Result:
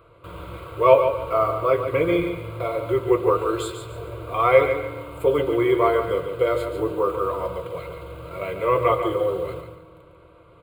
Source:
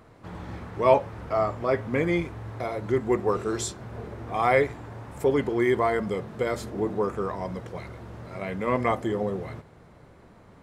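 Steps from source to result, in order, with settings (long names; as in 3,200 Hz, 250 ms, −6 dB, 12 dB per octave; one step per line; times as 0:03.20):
bass and treble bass −5 dB, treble −6 dB
in parallel at −10 dB: bit reduction 7 bits
on the sum: phaser with its sweep stopped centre 1,200 Hz, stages 8
notch comb filter 210 Hz
repeating echo 144 ms, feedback 29%, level −8 dB
on a send at −14 dB: convolution reverb RT60 1.8 s, pre-delay 3 ms
on the sum: level +6 dB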